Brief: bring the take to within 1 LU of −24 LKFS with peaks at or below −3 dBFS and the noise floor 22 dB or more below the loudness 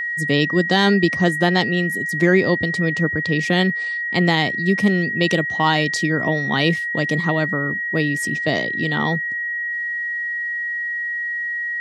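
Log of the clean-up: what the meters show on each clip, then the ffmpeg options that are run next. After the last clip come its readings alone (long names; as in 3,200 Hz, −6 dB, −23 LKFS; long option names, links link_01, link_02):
interfering tone 1,900 Hz; level of the tone −22 dBFS; integrated loudness −19.5 LKFS; sample peak −2.5 dBFS; target loudness −24.0 LKFS
→ -af "bandreject=frequency=1900:width=30"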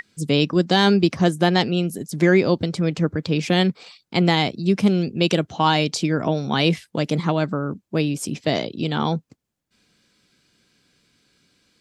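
interfering tone none found; integrated loudness −21.0 LKFS; sample peak −3.5 dBFS; target loudness −24.0 LKFS
→ -af "volume=-3dB"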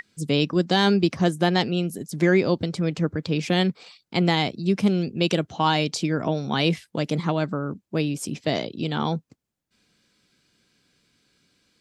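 integrated loudness −24.0 LKFS; sample peak −6.5 dBFS; background noise floor −78 dBFS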